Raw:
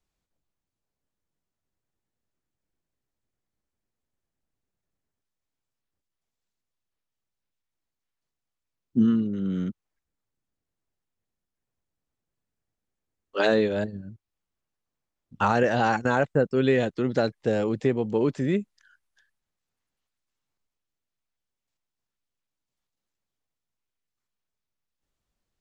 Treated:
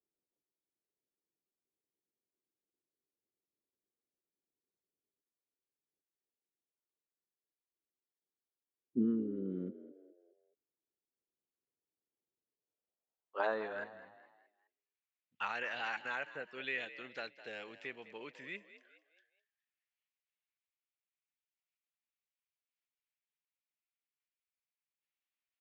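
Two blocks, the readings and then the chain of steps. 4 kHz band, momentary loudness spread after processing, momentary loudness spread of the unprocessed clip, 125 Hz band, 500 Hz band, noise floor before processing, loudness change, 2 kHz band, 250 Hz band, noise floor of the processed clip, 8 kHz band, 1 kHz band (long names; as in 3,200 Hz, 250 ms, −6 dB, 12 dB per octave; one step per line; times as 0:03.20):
−11.0 dB, 14 LU, 8 LU, −22.5 dB, −18.5 dB, below −85 dBFS, −15.0 dB, −9.0 dB, −15.0 dB, below −85 dBFS, can't be measured, −15.0 dB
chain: band-pass filter sweep 380 Hz → 2,400 Hz, 0:12.48–0:14.34
echo with shifted repeats 208 ms, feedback 41%, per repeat +53 Hz, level −14.5 dB
level −3 dB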